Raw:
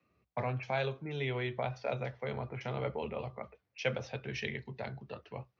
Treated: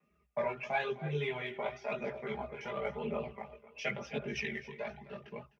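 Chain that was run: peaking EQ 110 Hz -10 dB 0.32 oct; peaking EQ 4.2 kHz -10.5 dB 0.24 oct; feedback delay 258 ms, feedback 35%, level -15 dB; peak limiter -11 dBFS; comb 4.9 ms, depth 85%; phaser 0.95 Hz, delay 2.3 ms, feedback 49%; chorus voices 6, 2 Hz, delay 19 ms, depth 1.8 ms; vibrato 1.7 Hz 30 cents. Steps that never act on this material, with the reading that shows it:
peak limiter -11 dBFS: peak at its input -18.0 dBFS

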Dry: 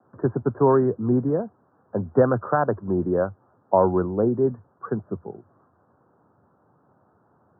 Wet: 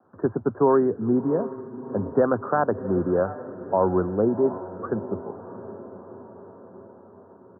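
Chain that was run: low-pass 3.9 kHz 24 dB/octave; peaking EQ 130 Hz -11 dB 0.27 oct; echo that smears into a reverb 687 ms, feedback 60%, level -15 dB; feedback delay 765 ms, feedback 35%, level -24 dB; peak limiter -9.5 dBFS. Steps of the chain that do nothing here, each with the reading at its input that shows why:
low-pass 3.9 kHz: input has nothing above 1.7 kHz

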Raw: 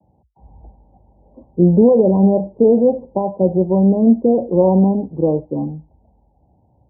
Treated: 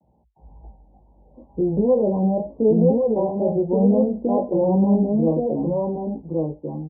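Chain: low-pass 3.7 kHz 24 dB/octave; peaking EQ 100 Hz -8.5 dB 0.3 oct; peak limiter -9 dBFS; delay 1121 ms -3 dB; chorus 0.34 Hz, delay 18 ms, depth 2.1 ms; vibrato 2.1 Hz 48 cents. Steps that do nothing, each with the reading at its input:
low-pass 3.7 kHz: input has nothing above 960 Hz

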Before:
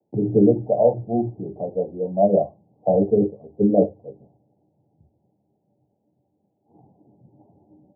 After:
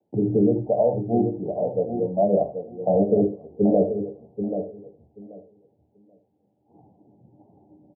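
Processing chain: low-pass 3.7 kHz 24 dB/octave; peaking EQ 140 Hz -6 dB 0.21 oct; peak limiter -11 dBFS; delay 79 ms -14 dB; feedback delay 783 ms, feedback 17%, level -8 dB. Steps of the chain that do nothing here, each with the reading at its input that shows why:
low-pass 3.7 kHz: input has nothing above 850 Hz

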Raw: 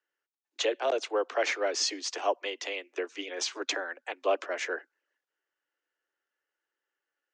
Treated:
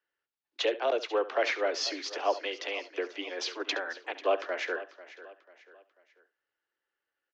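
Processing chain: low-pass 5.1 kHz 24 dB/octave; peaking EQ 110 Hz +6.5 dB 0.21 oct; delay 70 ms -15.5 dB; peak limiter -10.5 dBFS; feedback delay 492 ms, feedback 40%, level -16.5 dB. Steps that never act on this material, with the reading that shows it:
peaking EQ 110 Hz: input has nothing below 250 Hz; peak limiter -10.5 dBFS: peak at its input -14.5 dBFS

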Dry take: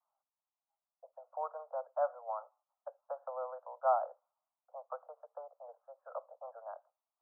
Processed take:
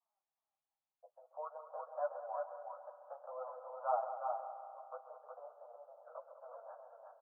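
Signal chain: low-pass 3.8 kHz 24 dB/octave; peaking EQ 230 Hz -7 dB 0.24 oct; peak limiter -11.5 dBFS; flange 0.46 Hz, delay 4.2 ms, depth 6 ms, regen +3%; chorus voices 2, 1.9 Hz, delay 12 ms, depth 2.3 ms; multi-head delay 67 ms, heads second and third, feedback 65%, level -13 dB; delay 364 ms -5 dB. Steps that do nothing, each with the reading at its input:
low-pass 3.8 kHz: input has nothing above 1.5 kHz; peaking EQ 230 Hz: input has nothing below 450 Hz; peak limiter -11.5 dBFS: peak at its input -18.5 dBFS

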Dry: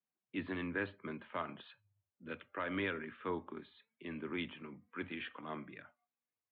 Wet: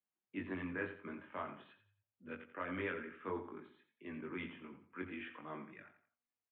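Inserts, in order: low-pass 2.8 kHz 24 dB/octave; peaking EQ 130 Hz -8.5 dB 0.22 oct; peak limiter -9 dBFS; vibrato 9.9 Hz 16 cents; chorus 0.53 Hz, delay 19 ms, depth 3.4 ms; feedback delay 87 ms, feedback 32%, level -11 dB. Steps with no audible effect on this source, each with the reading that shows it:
peak limiter -9 dBFS: peak at its input -24.0 dBFS

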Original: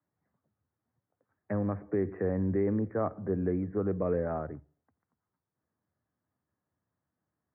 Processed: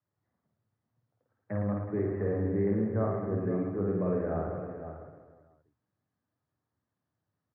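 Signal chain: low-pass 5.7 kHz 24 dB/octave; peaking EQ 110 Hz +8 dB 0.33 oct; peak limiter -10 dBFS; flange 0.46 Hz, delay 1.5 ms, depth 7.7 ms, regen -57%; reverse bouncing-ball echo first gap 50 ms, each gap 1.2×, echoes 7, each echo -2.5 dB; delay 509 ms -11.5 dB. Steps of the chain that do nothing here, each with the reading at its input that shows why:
low-pass 5.7 kHz: input has nothing above 1.4 kHz; peak limiter -10 dBFS: peak at its input -16.0 dBFS

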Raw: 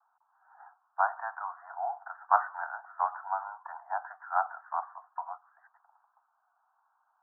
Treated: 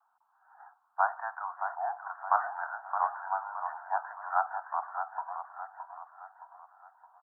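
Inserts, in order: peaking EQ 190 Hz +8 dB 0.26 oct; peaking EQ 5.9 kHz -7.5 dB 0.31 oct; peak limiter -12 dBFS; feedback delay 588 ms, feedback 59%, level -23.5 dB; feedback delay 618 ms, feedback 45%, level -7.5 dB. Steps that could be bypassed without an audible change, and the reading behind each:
peaking EQ 190 Hz: input has nothing below 570 Hz; peaking EQ 5.9 kHz: input has nothing above 1.8 kHz

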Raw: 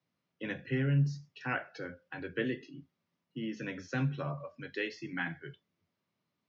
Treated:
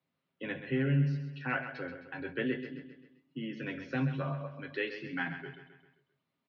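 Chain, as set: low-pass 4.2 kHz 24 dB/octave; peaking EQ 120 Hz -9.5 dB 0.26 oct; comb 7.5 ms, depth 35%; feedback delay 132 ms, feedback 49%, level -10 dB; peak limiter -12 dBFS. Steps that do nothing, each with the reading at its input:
peak limiter -12 dBFS: peak at its input -19.5 dBFS

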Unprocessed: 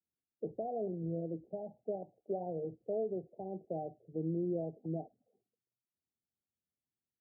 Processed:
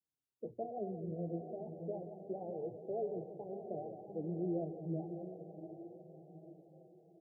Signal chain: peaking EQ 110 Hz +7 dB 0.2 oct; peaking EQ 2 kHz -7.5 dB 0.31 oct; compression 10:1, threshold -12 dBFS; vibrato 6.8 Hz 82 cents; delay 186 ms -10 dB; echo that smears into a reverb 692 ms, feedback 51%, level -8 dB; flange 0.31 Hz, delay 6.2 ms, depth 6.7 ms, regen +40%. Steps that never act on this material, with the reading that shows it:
peaking EQ 2 kHz: input has nothing above 850 Hz; compression, threshold -12 dBFS: peak at its input -26.0 dBFS

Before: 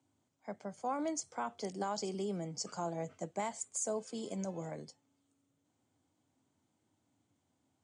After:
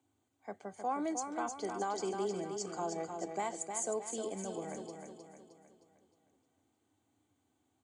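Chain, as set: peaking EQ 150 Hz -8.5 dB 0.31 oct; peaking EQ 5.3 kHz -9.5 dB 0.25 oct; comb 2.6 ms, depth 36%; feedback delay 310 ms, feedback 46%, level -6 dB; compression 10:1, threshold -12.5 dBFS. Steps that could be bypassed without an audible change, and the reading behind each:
compression, threshold -12.5 dBFS: peak at its input -23.0 dBFS

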